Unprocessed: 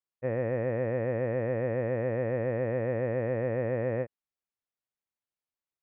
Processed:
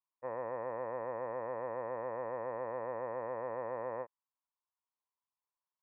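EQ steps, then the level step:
resonant band-pass 1,000 Hz, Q 7.2
high-frequency loss of the air 340 metres
+12.0 dB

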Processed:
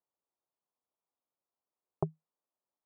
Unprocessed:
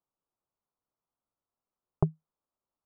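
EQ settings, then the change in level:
high-pass filter 440 Hz 6 dB per octave
low-pass filter 1,000 Hz 12 dB per octave
+1.0 dB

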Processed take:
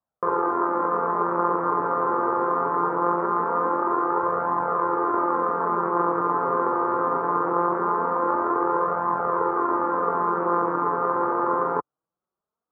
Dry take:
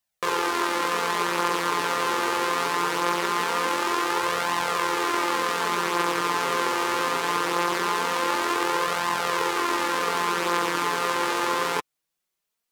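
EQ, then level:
high-pass filter 58 Hz
elliptic low-pass filter 1,300 Hz, stop band 70 dB
+3.5 dB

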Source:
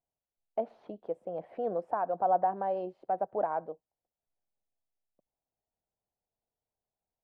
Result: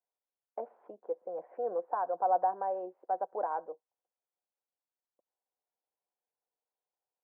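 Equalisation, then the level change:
loudspeaker in its box 340–2,000 Hz, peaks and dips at 350 Hz +4 dB, 500 Hz +7 dB, 730 Hz +5 dB, 1,000 Hz +8 dB, 1,500 Hz +5 dB
notch filter 660 Hz, Q 12
−7.0 dB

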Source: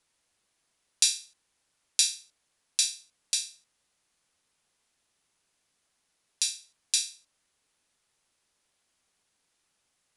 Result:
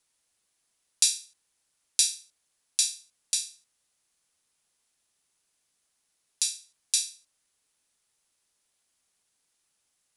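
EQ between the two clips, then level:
high-shelf EQ 5,700 Hz +9.5 dB
−4.5 dB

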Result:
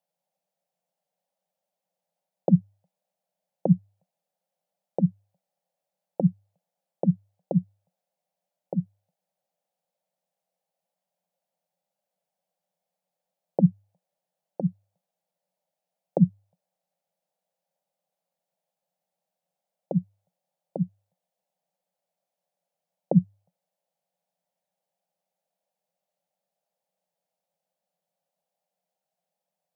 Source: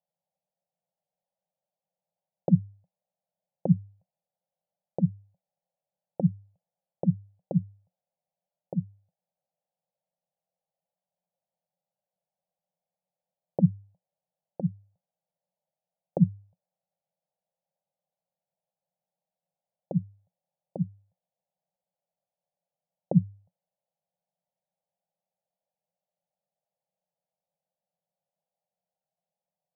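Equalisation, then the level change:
high-pass filter 170 Hz 24 dB per octave
+5.0 dB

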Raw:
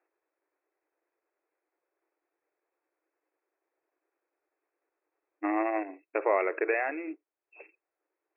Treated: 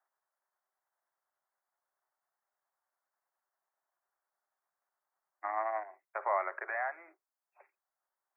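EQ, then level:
Butterworth high-pass 400 Hz 72 dB per octave
phaser with its sweep stopped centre 1,100 Hz, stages 4
0.0 dB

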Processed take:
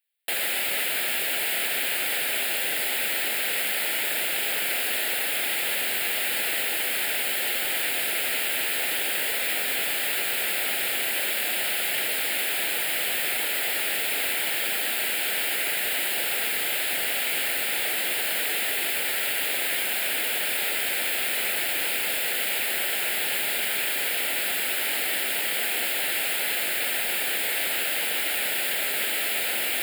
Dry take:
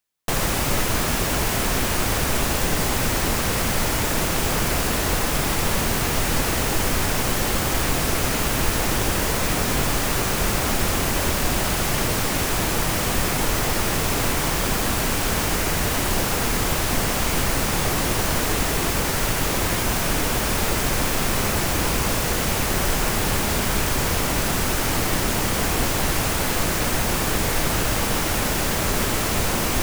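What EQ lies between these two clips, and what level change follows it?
high-pass filter 830 Hz 12 dB per octave
phaser with its sweep stopped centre 2,600 Hz, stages 4
+2.5 dB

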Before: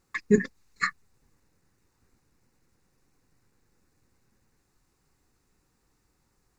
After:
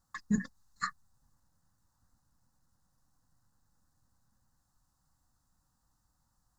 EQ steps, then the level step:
phaser with its sweep stopped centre 970 Hz, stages 4
−3.0 dB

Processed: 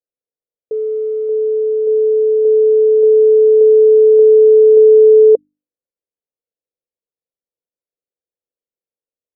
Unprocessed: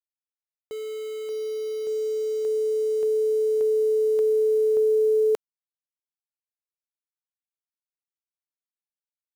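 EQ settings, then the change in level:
low-pass with resonance 500 Hz, resonance Q 4.9
mains-hum notches 50/100/150/200/250/300 Hz
+3.5 dB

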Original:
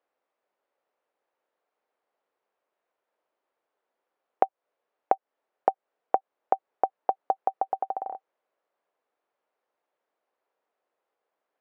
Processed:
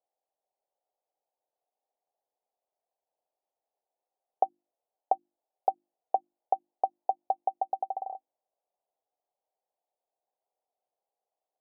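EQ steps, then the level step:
high-pass filter 180 Hz
transistor ladder low-pass 840 Hz, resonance 65%
mains-hum notches 50/100/150/200/250/300/350 Hz
−2.5 dB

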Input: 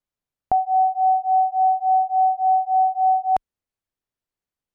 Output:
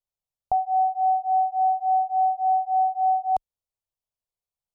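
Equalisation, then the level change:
phaser with its sweep stopped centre 710 Hz, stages 4
−3.5 dB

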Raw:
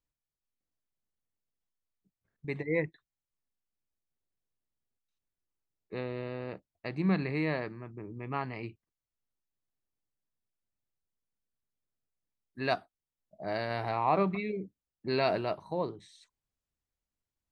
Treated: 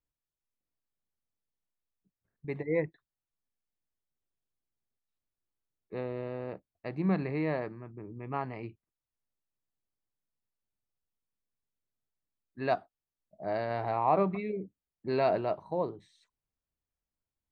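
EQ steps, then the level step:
dynamic equaliser 660 Hz, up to +4 dB, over −43 dBFS, Q 1
high-shelf EQ 2,600 Hz −10.5 dB
−1.0 dB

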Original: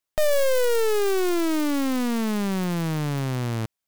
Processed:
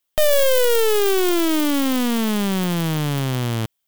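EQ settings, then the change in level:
parametric band 3,200 Hz +7.5 dB 0.35 octaves
high-shelf EQ 11,000 Hz +9.5 dB
+4.0 dB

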